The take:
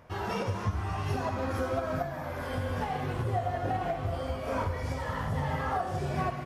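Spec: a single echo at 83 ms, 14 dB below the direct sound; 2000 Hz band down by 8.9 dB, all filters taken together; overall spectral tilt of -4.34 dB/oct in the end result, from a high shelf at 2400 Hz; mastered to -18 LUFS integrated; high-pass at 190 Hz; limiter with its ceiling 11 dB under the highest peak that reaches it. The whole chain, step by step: HPF 190 Hz; bell 2000 Hz -8.5 dB; high shelf 2400 Hz -8 dB; limiter -32.5 dBFS; echo 83 ms -14 dB; gain +22.5 dB

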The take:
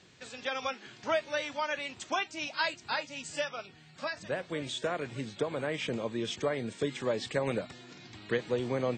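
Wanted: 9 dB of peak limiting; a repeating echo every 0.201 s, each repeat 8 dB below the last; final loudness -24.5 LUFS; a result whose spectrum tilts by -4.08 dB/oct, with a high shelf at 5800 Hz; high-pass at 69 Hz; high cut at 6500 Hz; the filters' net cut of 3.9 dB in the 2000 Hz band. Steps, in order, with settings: HPF 69 Hz; LPF 6500 Hz; bell 2000 Hz -6 dB; high shelf 5800 Hz +7 dB; limiter -26.5 dBFS; feedback echo 0.201 s, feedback 40%, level -8 dB; gain +12.5 dB

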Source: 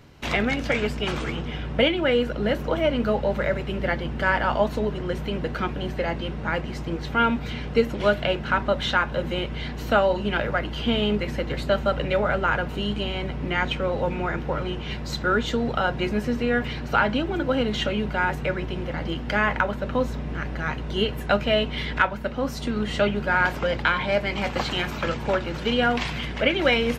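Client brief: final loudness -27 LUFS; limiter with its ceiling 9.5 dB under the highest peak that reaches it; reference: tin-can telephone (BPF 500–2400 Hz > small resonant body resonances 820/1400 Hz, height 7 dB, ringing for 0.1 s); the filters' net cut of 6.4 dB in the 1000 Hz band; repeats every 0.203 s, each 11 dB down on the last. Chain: bell 1000 Hz -8.5 dB; limiter -17.5 dBFS; BPF 500–2400 Hz; feedback echo 0.203 s, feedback 28%, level -11 dB; small resonant body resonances 820/1400 Hz, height 7 dB, ringing for 0.1 s; gain +5.5 dB

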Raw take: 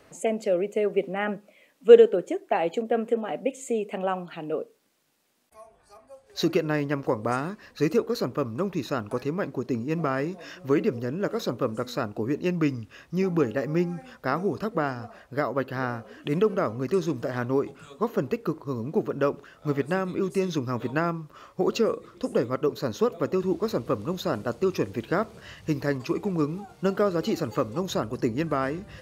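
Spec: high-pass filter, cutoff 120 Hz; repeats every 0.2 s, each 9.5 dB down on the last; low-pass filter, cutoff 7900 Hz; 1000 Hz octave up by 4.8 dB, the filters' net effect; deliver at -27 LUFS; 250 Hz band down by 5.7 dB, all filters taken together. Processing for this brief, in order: HPF 120 Hz; LPF 7900 Hz; bell 250 Hz -8.5 dB; bell 1000 Hz +7 dB; feedback echo 0.2 s, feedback 33%, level -9.5 dB; gain +0.5 dB

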